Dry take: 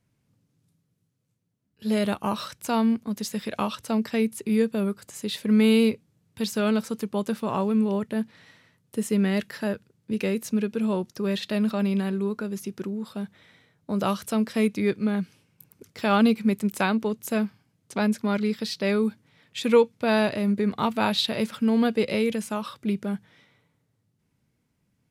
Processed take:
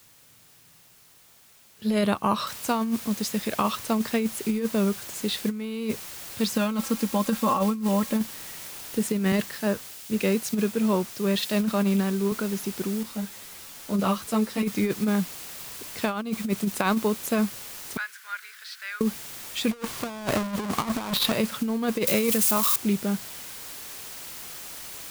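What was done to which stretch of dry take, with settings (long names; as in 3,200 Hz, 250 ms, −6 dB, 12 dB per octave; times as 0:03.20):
0:02.47: noise floor change −58 dB −42 dB
0:06.54–0:08.21: comb filter 3.7 ms
0:09.32–0:12.32: multiband upward and downward expander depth 70%
0:13.03–0:14.63: string-ensemble chorus
0:17.97–0:19.01: four-pole ladder high-pass 1,400 Hz, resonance 70%
0:19.71–0:21.32: each half-wave held at its own peak
0:22.07–0:22.76: spike at every zero crossing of −20 dBFS
whole clip: dynamic equaliser 1,100 Hz, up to +7 dB, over −46 dBFS, Q 5.1; compressor whose output falls as the input rises −23 dBFS, ratio −0.5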